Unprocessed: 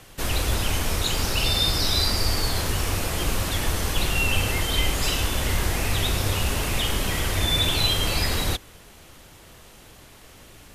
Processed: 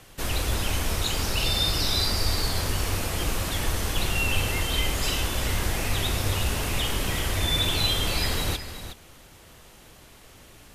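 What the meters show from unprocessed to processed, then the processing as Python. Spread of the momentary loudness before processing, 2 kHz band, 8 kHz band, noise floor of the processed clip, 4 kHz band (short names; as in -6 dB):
5 LU, -2.0 dB, -2.0 dB, -51 dBFS, -2.0 dB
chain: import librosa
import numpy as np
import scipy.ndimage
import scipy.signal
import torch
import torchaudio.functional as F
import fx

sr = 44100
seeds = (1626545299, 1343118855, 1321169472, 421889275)

y = x + 10.0 ** (-11.0 / 20.0) * np.pad(x, (int(366 * sr / 1000.0), 0))[:len(x)]
y = F.gain(torch.from_numpy(y), -2.5).numpy()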